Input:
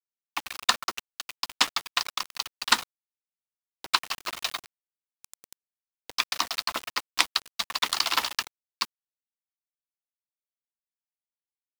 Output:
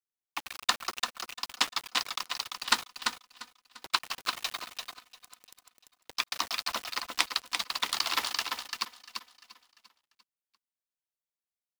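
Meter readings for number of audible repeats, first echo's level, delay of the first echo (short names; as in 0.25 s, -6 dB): 4, -5.5 dB, 0.342 s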